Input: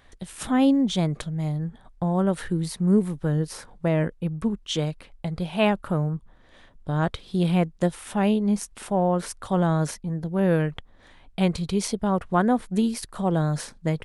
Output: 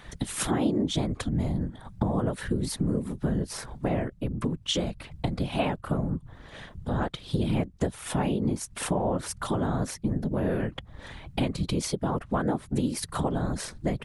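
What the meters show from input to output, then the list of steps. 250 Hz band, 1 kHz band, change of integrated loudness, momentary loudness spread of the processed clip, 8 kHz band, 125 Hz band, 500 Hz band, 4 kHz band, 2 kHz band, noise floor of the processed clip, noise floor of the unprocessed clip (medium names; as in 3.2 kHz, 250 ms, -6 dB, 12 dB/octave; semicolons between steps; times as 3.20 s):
-5.0 dB, -4.5 dB, -4.5 dB, 7 LU, +1.0 dB, -4.0 dB, -5.0 dB, 0.0 dB, -4.0 dB, -51 dBFS, -53 dBFS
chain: compression 4:1, threshold -36 dBFS, peak gain reduction 18 dB; whisper effect; trim +9 dB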